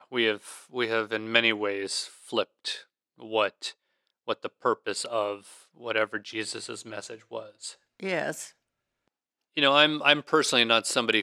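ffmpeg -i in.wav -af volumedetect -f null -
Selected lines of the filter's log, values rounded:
mean_volume: -28.8 dB
max_volume: -3.1 dB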